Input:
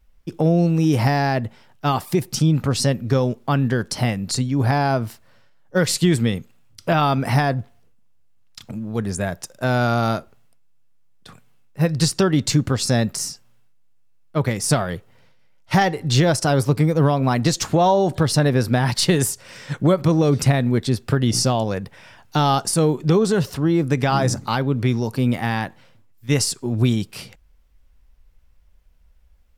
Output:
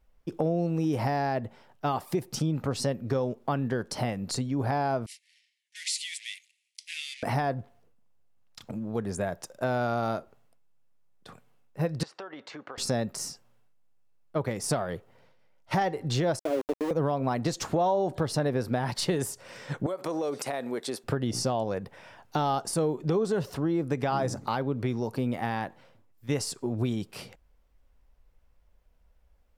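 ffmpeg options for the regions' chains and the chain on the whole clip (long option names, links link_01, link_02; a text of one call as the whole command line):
ffmpeg -i in.wav -filter_complex "[0:a]asettb=1/sr,asplit=3[link_01][link_02][link_03];[link_01]atrim=end=5.064[link_04];[link_02]atrim=start=5.06:end=7.23,asetpts=PTS-STARTPTS,afade=type=in:duration=0.004:curve=qsin,afade=type=out:start_time=2.166:duration=0.004:curve=qsin,aeval=exprs='val(0)+0.5*0.0422*sgn(val(0))':channel_layout=same,acrusher=bits=4:mix=0:aa=0.5,asuperpass=centerf=5100:order=20:qfactor=0.56[link_05];[link_03]atrim=start=7.226[link_06];[link_04][link_05]acrossfade=duration=0.004:curve1=hsin:curve2=qsin[link_07];[link_07][link_06]acrossfade=duration=0.004:curve1=qsin:curve2=hsin,asettb=1/sr,asplit=3[link_08][link_09][link_10];[link_08]atrim=end=12.034[link_11];[link_09]atrim=start=12.03:end=12.78,asetpts=PTS-STARTPTS,afade=type=in:duration=0.004:curve=qsin,afade=type=out:start_time=0.746:duration=0.004:curve=qsin,highpass=720,lowpass=2400,acompressor=threshold=-33dB:ratio=16:attack=3.2:release=140:knee=1:detection=peak[link_12];[link_10]atrim=start=12.776[link_13];[link_11][link_12]acrossfade=duration=0.004:curve1=hsin:curve2=qsin[link_14];[link_14][link_13]acrossfade=duration=0.004:curve1=qsin:curve2=hsin,asettb=1/sr,asplit=3[link_15][link_16][link_17];[link_15]atrim=end=16.394[link_18];[link_16]atrim=start=16.39:end=16.91,asetpts=PTS-STARTPTS,afade=type=in:duration=0.004:curve=qsin,afade=type=out:start_time=0.516:duration=0.004:curve=qsin,asuperpass=centerf=410:order=20:qfactor=0.96,aeval=exprs='val(0)*gte(abs(val(0)),0.0631)':channel_layout=same[link_19];[link_17]atrim=start=16.906[link_20];[link_18][link_19]acrossfade=duration=0.004:curve1=hsin:curve2=qsin[link_21];[link_21][link_20]acrossfade=duration=0.004:curve1=qsin:curve2=hsin,asettb=1/sr,asplit=3[link_22][link_23][link_24];[link_22]atrim=end=19.864[link_25];[link_23]atrim=start=19.86:end=21.04,asetpts=PTS-STARTPTS,afade=type=in:duration=0.004:curve=qsin,afade=type=out:start_time=1.176:duration=0.004:curve=qsin,highpass=420,equalizer=frequency=9600:width_type=o:width=1.1:gain=7.5,acompressor=threshold=-22dB:ratio=10:attack=3.2:release=140:knee=1:detection=peak[link_26];[link_24]atrim=start=21.036[link_27];[link_25][link_26]acrossfade=duration=0.004:curve1=hsin:curve2=qsin[link_28];[link_28][link_27]acrossfade=duration=0.004:curve1=qsin:curve2=hsin,equalizer=frequency=590:width=0.5:gain=8.5,acompressor=threshold=-20dB:ratio=2,volume=-8.5dB" out.wav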